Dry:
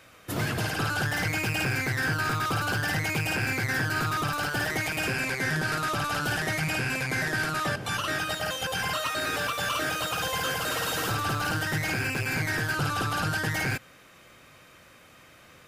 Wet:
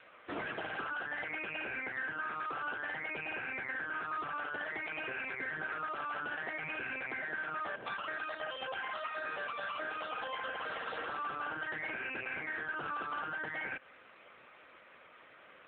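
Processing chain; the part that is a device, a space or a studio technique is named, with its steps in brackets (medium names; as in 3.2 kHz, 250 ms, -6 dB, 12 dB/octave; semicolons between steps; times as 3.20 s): voicemail (band-pass 360–2800 Hz; compression 12:1, threshold -34 dBFS, peak gain reduction 9 dB; AMR-NB 7.95 kbps 8 kHz)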